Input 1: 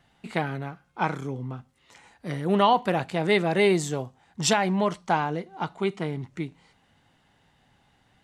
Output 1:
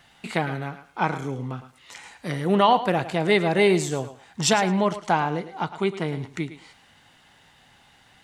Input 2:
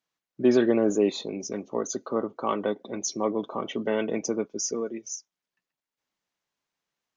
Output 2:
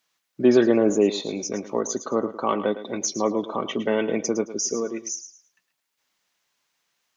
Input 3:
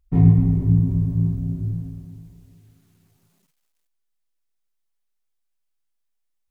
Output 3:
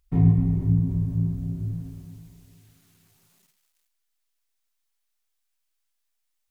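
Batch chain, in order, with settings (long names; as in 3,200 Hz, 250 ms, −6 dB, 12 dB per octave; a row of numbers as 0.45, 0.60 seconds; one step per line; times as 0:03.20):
feedback echo with a high-pass in the loop 108 ms, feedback 17%, high-pass 220 Hz, level −13 dB
one half of a high-frequency compander encoder only
loudness normalisation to −24 LKFS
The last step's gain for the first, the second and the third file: +2.0, +3.5, −4.0 decibels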